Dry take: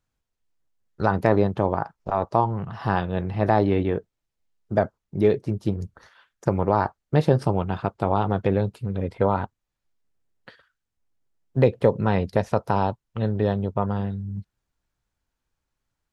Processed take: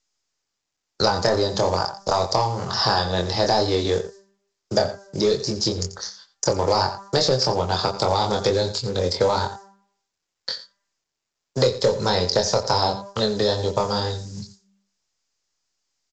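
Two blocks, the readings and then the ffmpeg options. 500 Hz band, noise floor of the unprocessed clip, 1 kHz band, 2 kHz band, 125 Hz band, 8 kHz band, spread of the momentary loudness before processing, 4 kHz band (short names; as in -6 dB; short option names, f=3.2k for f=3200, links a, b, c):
+2.5 dB, -83 dBFS, +2.0 dB, +2.5 dB, -3.0 dB, n/a, 9 LU, +22.0 dB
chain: -filter_complex "[0:a]agate=range=-33dB:threshold=-44dB:ratio=3:detection=peak,aexciter=amount=13.6:drive=8.5:freq=4.2k,bandreject=f=197.7:t=h:w=4,bandreject=f=395.4:t=h:w=4,bandreject=f=593.1:t=h:w=4,bandreject=f=790.8:t=h:w=4,bandreject=f=988.5:t=h:w=4,bandreject=f=1.1862k:t=h:w=4,bandreject=f=1.3839k:t=h:w=4,bandreject=f=1.5816k:t=h:w=4,bandreject=f=1.7793k:t=h:w=4,bandreject=f=1.977k:t=h:w=4,acontrast=57,flanger=delay=22.5:depth=2.1:speed=2.2,equalizer=f=4.9k:w=4.1:g=8.5,aecho=1:1:87:0.158,acrossover=split=84|220|3600[a][b][c][d];[a]acompressor=threshold=-37dB:ratio=4[e];[b]acompressor=threshold=-34dB:ratio=4[f];[c]acompressor=threshold=-27dB:ratio=4[g];[d]acompressor=threshold=-38dB:ratio=4[h];[e][f][g][h]amix=inputs=4:normalize=0,lowshelf=f=370:t=q:w=1.5:g=-6,bandreject=f=700:w=16,acrusher=bits=5:mode=log:mix=0:aa=0.000001,volume=8dB" -ar 16000 -c:a pcm_mulaw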